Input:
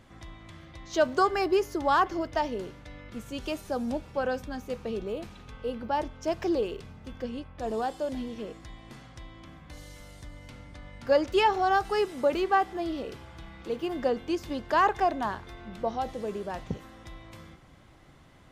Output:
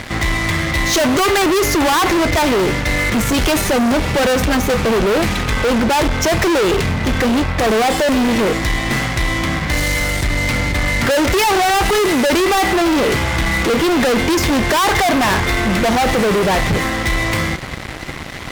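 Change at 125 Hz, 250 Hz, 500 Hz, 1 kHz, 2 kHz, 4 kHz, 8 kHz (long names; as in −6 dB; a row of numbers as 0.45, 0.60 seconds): +24.0, +17.5, +12.5, +11.0, +19.5, +21.0, +28.0 decibels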